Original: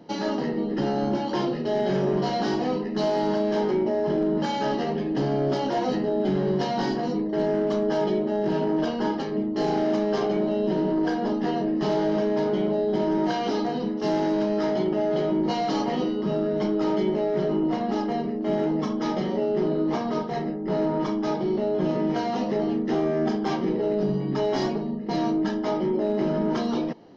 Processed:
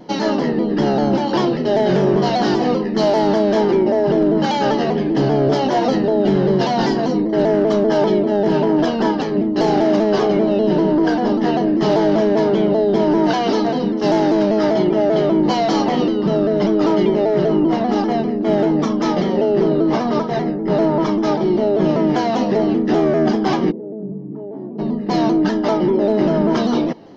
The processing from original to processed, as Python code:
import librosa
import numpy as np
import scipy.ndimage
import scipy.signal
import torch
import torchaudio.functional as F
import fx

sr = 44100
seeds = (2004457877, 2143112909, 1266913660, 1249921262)

y = fx.ladder_bandpass(x, sr, hz=250.0, resonance_pct=20, at=(23.7, 24.78), fade=0.02)
y = fx.vibrato_shape(y, sr, shape='saw_down', rate_hz=5.1, depth_cents=100.0)
y = y * 10.0 ** (8.5 / 20.0)